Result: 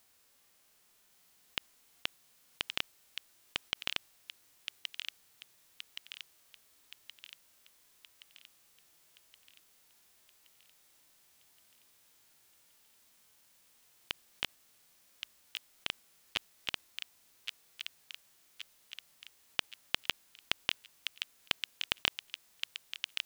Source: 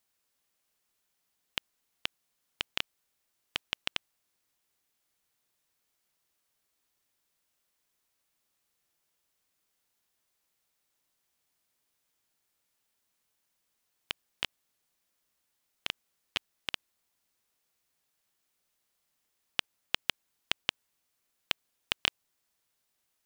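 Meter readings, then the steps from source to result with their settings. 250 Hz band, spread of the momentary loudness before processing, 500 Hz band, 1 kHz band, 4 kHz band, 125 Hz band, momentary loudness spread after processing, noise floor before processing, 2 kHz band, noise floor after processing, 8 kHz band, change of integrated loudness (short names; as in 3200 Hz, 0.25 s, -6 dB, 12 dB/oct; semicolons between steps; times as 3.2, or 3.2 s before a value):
-2.0 dB, 7 LU, -2.0 dB, -2.0 dB, -0.5 dB, -2.0 dB, 21 LU, -79 dBFS, -1.0 dB, -68 dBFS, +0.5 dB, -3.5 dB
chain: harmonic-percussive split percussive -18 dB; thin delay 1.122 s, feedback 53%, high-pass 2100 Hz, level -4 dB; gain +16 dB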